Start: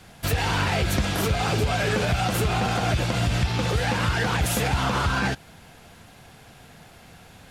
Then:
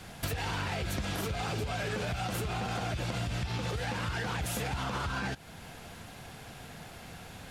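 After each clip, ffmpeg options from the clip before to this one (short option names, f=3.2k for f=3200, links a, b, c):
-af "alimiter=limit=-20.5dB:level=0:latency=1:release=355,acompressor=threshold=-32dB:ratio=6,volume=1.5dB"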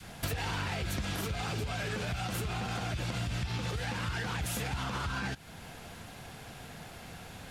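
-af "adynamicequalizer=threshold=0.00398:dfrequency=570:dqfactor=0.87:tfrequency=570:tqfactor=0.87:attack=5:release=100:ratio=0.375:range=2:mode=cutabove:tftype=bell"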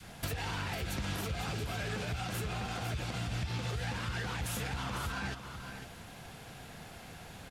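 -af "aecho=1:1:501:0.355,volume=-2.5dB"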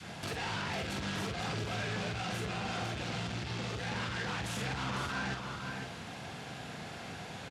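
-filter_complex "[0:a]asoftclip=type=tanh:threshold=-38dB,highpass=110,lowpass=6.8k,asplit=2[a][b];[b]adelay=46,volume=-5.5dB[c];[a][c]amix=inputs=2:normalize=0,volume=5.5dB"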